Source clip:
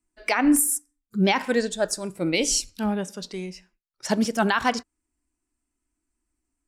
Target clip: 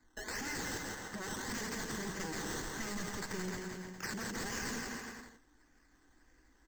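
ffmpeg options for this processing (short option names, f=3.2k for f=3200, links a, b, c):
-filter_complex "[0:a]acrossover=split=320[a][b];[b]acrusher=samples=15:mix=1:aa=0.000001:lfo=1:lforange=9:lforate=1.7[c];[a][c]amix=inputs=2:normalize=0,acompressor=threshold=-42dB:ratio=1.5,aeval=exprs='0.0188*(abs(mod(val(0)/0.0188+3,4)-2)-1)':c=same,alimiter=level_in=21.5dB:limit=-24dB:level=0:latency=1:release=118,volume=-21.5dB,asplit=2[d][e];[e]aecho=0:1:170|306|414.8|501.8|571.5:0.631|0.398|0.251|0.158|0.1[f];[d][f]amix=inputs=2:normalize=0,acrossover=split=490|3000[g][h][i];[h]acompressor=threshold=-55dB:ratio=6[j];[g][j][i]amix=inputs=3:normalize=0,superequalizer=8b=0.501:11b=2.51:14b=2:15b=2.82:16b=0.398,volume=10dB"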